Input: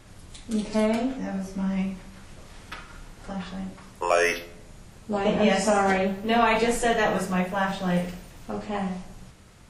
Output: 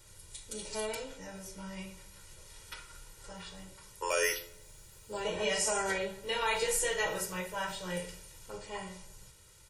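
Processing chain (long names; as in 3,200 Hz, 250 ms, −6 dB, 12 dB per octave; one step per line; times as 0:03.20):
first-order pre-emphasis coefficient 0.8
0:04.28–0:05.22: background noise white −73 dBFS
comb filter 2.1 ms, depth 90%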